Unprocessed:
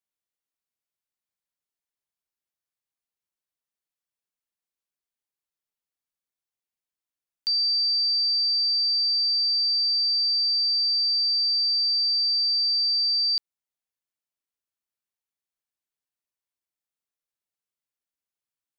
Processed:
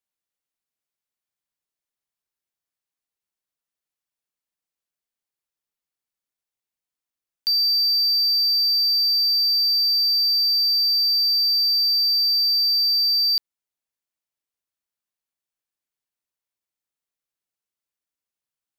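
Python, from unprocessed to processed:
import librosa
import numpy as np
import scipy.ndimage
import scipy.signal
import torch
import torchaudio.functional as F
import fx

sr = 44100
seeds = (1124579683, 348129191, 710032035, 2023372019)

y = fx.leveller(x, sr, passes=1)
y = y * librosa.db_to_amplitude(3.0)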